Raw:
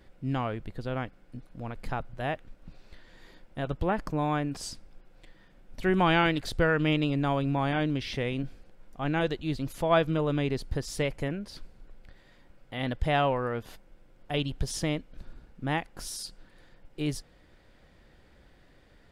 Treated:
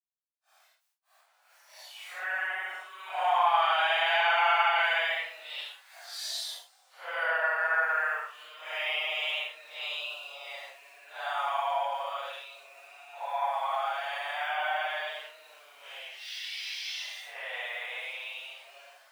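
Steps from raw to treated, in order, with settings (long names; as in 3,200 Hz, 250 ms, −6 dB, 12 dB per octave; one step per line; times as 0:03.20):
centre clipping without the shift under −48 dBFS
extreme stretch with random phases 6.5×, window 0.05 s, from 0:05.51
Butterworth high-pass 660 Hz 48 dB per octave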